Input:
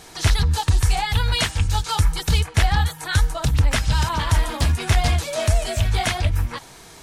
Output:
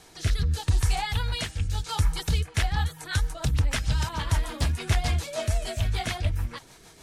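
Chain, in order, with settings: rotary speaker horn 0.8 Hz, later 6.7 Hz, at 2.1; gain -5 dB

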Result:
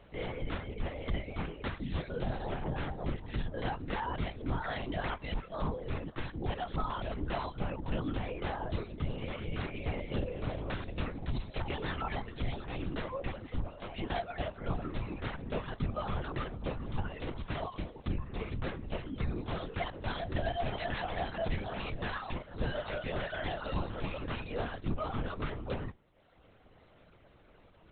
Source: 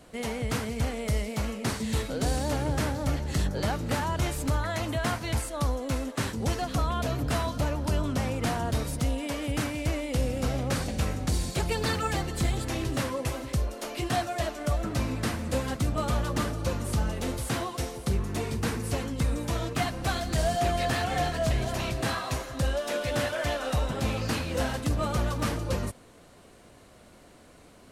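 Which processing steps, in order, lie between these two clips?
reverb removal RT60 1.1 s; in parallel at 0 dB: limiter -25.5 dBFS, peak gain reduction 10 dB; on the sum: resonator 97 Hz, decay 0.2 s, harmonics odd, mix 50%; LPC vocoder at 8 kHz whisper; gain -5 dB

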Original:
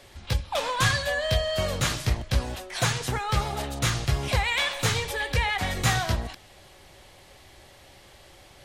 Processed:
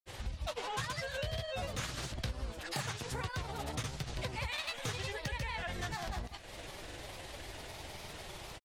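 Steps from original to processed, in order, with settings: grains 0.1 s, grains 20/s, pitch spread up and down by 3 st; compressor 5:1, threshold -44 dBFS, peak gain reduction 22.5 dB; vibrato 0.37 Hz 13 cents; gain +6 dB

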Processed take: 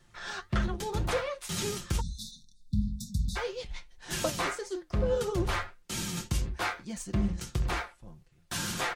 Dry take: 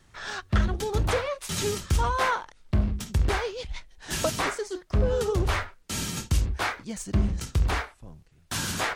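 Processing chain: flange 1.7 Hz, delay 7.2 ms, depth 4.5 ms, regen +70%; spectral delete 2–3.36, 260–3500 Hz; comb 5.7 ms, depth 43%

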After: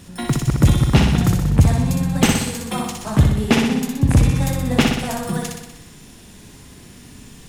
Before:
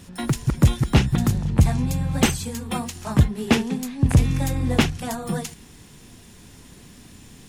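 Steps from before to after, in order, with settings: flutter echo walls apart 10.6 m, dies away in 0.92 s; gain +2 dB

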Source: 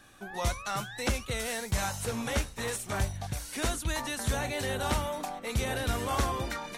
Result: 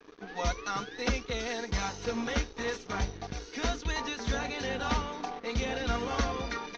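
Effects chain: band noise 290–460 Hz -45 dBFS; comb 4.2 ms, depth 59%; crossover distortion -45.5 dBFS; Chebyshev low-pass 6200 Hz, order 6

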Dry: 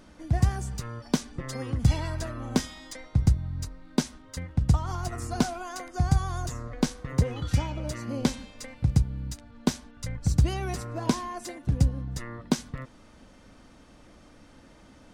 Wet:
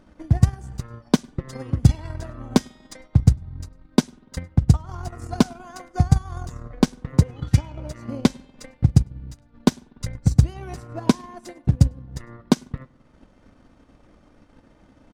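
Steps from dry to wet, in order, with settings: on a send: echo 0.104 s -20 dB; on the sum: spring tank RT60 1.3 s, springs 48 ms, chirp 35 ms, DRR 14 dB; transient shaper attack +9 dB, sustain -7 dB; mismatched tape noise reduction decoder only; gain -1 dB

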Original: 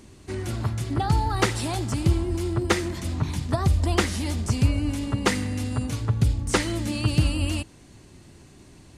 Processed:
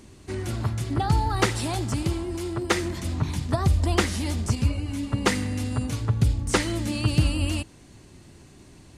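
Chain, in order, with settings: 2.03–2.75 low shelf 180 Hz -9 dB; 4.55–5.13 ensemble effect

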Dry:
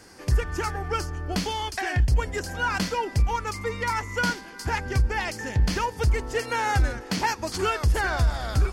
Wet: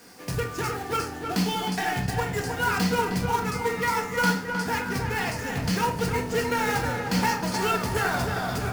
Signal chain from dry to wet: HPF 110 Hz 24 dB/oct; companded quantiser 4-bit; on a send: darkening echo 0.311 s, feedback 60%, low-pass 2700 Hz, level -6 dB; on the sum: shoebox room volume 480 m³, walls furnished, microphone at 1.8 m; gain -2.5 dB

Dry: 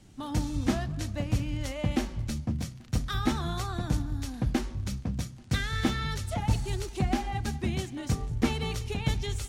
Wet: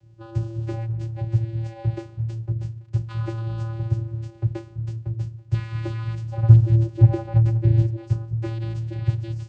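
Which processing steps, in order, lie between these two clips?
6.4–7.96 low shelf 470 Hz +10.5 dB; vocoder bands 8, square 113 Hz; gain +7.5 dB

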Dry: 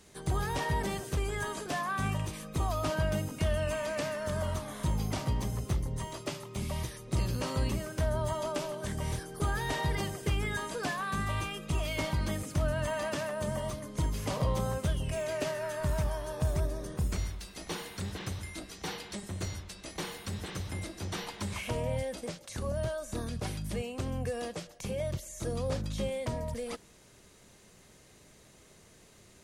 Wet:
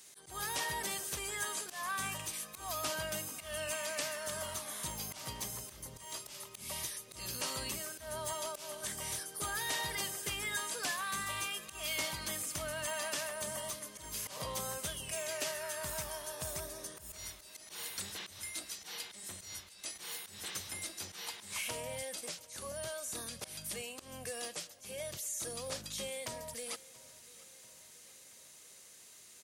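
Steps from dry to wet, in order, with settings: tilt +4 dB/oct; auto swell 0.151 s; feedback echo 0.684 s, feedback 59%, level -21 dB; gain -5 dB

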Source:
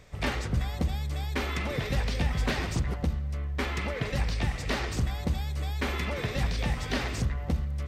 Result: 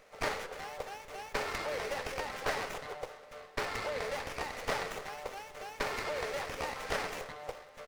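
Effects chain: steep high-pass 400 Hz 72 dB/oct; pitch shift +0.5 st; on a send: feedback echo 0.313 s, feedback 59%, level -21 dB; on the sum: running maximum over 9 samples

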